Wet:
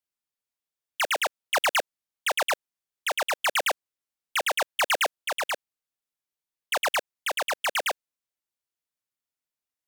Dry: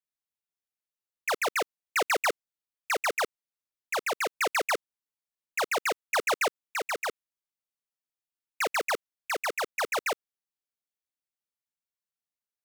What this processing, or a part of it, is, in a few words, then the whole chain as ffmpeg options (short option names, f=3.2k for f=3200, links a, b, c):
nightcore: -af "asetrate=56448,aresample=44100,volume=2.5dB"